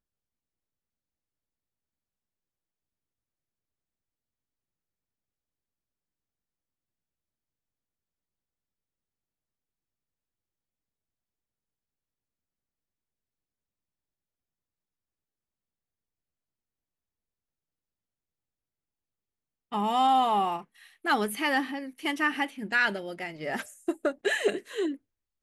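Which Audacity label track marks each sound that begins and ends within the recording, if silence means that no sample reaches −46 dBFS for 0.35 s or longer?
19.720000	24.960000	sound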